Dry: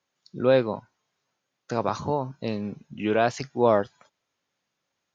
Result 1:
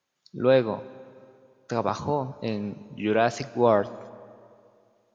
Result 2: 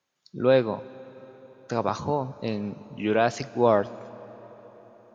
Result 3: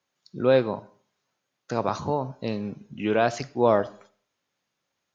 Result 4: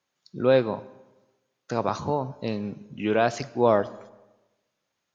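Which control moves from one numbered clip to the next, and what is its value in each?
comb and all-pass reverb, RT60: 2.4, 5.1, 0.47, 1.1 seconds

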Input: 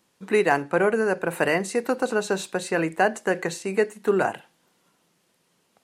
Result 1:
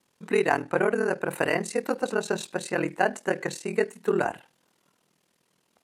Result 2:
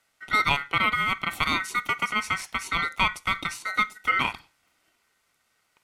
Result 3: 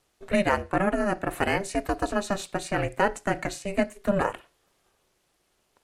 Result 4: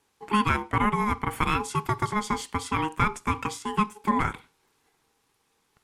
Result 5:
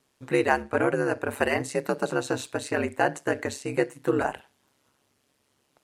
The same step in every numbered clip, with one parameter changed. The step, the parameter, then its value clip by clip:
ring modulation, frequency: 20, 1,700, 200, 630, 68 Hertz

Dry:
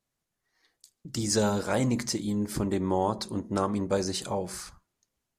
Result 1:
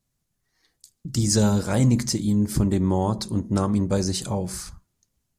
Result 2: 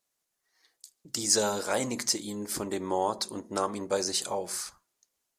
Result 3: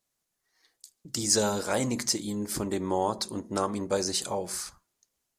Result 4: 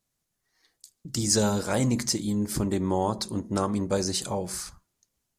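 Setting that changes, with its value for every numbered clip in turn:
bass and treble, bass: +12, −14, −6, +3 decibels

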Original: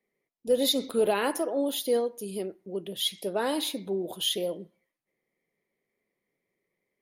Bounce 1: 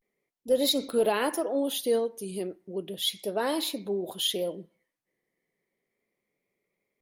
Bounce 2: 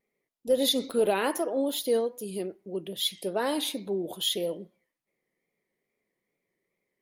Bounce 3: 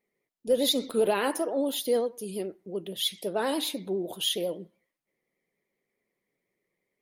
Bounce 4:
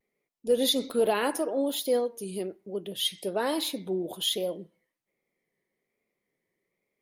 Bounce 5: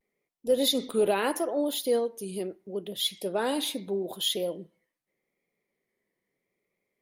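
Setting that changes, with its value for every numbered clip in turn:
pitch vibrato, speed: 0.34, 2.4, 9.9, 1.2, 0.78 Hertz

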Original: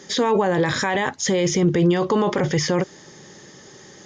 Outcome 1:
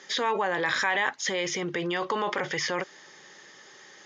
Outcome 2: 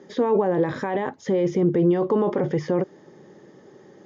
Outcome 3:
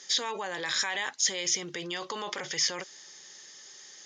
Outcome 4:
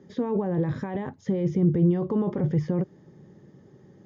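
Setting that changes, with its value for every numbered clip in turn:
resonant band-pass, frequency: 2,000, 370, 5,200, 120 Hertz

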